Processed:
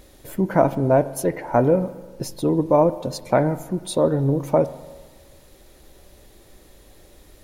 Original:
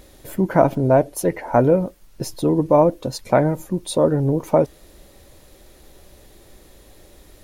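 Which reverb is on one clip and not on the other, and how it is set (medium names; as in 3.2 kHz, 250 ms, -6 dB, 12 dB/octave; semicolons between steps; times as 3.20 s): spring tank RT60 1.4 s, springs 36/43 ms, chirp 40 ms, DRR 14.5 dB; trim -2 dB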